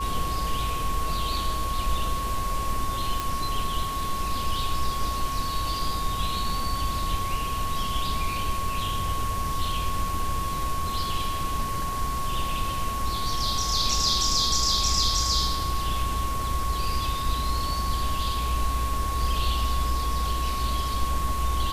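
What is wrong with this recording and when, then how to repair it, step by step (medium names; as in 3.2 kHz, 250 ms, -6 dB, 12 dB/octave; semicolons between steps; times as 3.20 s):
whine 1.1 kHz -29 dBFS
3.20 s: pop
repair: de-click; band-stop 1.1 kHz, Q 30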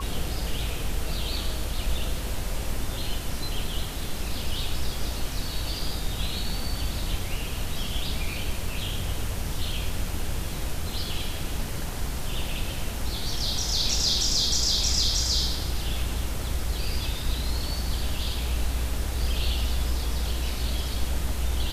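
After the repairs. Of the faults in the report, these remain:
nothing left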